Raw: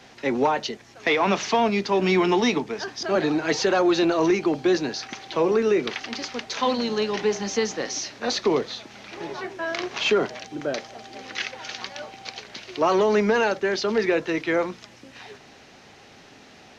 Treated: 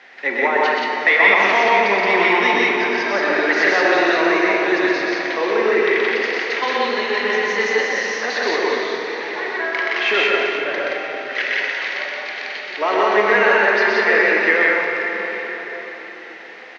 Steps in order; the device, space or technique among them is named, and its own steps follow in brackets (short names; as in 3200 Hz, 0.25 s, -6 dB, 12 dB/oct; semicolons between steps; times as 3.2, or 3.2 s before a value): station announcement (BPF 420–3700 Hz; bell 1900 Hz +12 dB 0.58 oct; loudspeakers at several distances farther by 43 m -2 dB, 60 m -1 dB; reverb RT60 4.7 s, pre-delay 19 ms, DRR 0.5 dB); 10.57–11.33 high shelf 4400 Hz -5.5 dB